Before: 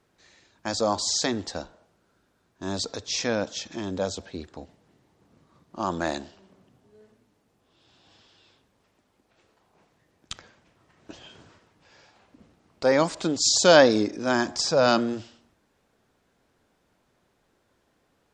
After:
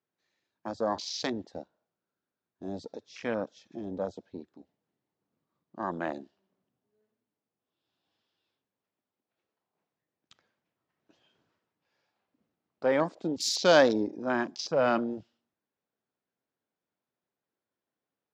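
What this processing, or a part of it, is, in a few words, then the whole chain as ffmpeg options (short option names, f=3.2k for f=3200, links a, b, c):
over-cleaned archive recording: -af "highpass=130,lowpass=5.7k,afwtdn=0.0282,volume=-5dB"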